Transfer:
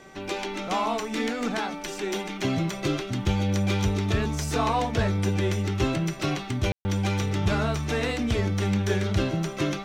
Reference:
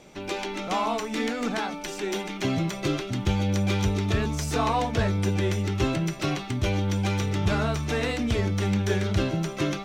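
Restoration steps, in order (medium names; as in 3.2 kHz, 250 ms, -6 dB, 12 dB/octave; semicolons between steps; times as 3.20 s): de-hum 386 Hz, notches 5; room tone fill 6.72–6.85 s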